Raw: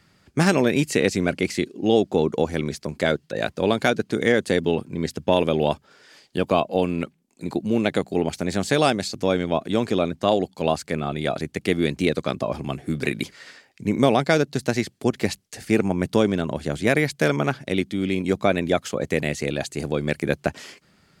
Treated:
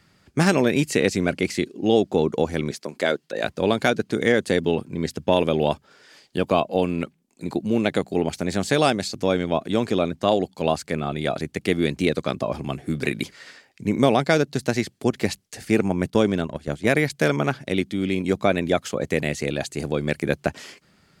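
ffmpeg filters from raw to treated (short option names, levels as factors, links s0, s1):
-filter_complex "[0:a]asettb=1/sr,asplit=3[s0][s1][s2];[s0]atrim=end=2.714[s3];[s1]atrim=start=2.71:end=3.44,asetpts=PTS-STARTPTS,afade=t=in:d=0.004:c=qsin,afade=t=out:st=0.726:d=0.004:c=qsin,highpass=270[s4];[s2]atrim=start=3.436[s5];[s3][s4]acrossfade=d=0.004:c1=hsin:c2=qsin[s6];[s6][s5]acrossfade=d=0.004:c1=qsin:c2=hsin,asettb=1/sr,asplit=3[s7][s8][s9];[s7]atrim=end=16.104[s10];[s8]atrim=start=16.1:end=17.1,asetpts=PTS-STARTPTS,afade=t=in:d=0.004:c=qsin,afade=t=out:st=0.996:d=0.004:c=qsin,agate=range=0.316:threshold=0.0447:ratio=16:release=100:detection=peak[s11];[s9]atrim=start=17.096[s12];[s10][s11]acrossfade=d=0.004:c1=hsin:c2=qsin[s13];[s13][s12]acrossfade=d=0.004:c1=qsin:c2=hsin"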